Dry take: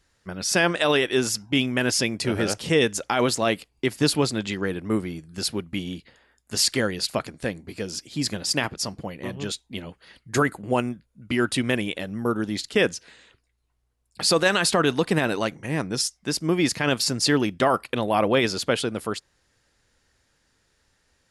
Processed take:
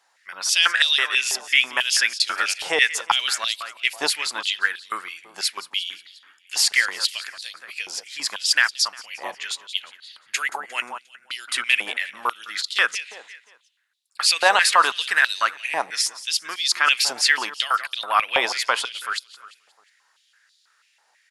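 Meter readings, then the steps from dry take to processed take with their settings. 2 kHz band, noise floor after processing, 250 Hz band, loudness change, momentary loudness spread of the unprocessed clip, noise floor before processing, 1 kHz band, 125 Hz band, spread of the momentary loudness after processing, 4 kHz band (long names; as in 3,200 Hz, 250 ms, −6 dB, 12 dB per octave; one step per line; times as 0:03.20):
+7.0 dB, −64 dBFS, −22.0 dB, +3.0 dB, 12 LU, −70 dBFS, +4.5 dB, below −30 dB, 15 LU, +6.0 dB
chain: repeating echo 177 ms, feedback 49%, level −16 dB
high-pass on a step sequencer 6.1 Hz 810–3,900 Hz
level +2 dB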